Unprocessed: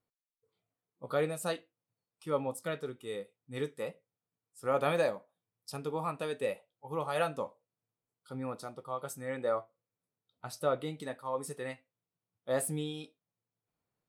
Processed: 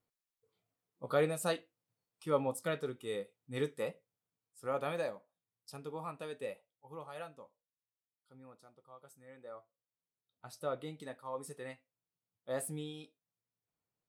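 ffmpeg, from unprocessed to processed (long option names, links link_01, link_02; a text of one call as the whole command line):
ffmpeg -i in.wav -af "volume=12.5dB,afade=type=out:start_time=3.84:duration=1.04:silence=0.398107,afade=type=out:start_time=6.43:duration=0.99:silence=0.298538,afade=type=in:start_time=9.49:duration=1.38:silence=0.251189" out.wav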